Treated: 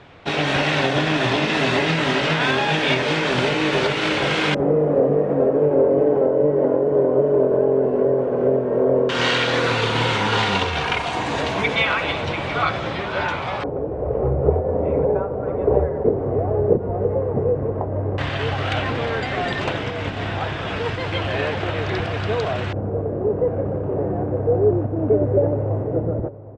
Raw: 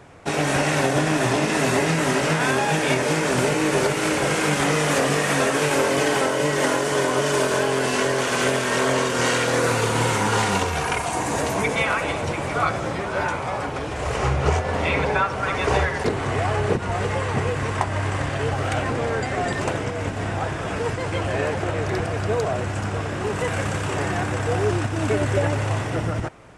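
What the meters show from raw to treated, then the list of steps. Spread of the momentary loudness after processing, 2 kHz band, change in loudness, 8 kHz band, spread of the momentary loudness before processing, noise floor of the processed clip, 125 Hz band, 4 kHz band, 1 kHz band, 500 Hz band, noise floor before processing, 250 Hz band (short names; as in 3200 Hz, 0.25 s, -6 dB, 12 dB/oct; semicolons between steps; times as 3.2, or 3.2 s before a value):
7 LU, 0.0 dB, +2.0 dB, -12.5 dB, 6 LU, -27 dBFS, +0.5 dB, +3.5 dB, -1.5 dB, +4.5 dB, -28 dBFS, +1.5 dB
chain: outdoor echo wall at 130 m, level -17 dB; LFO low-pass square 0.11 Hz 500–3600 Hz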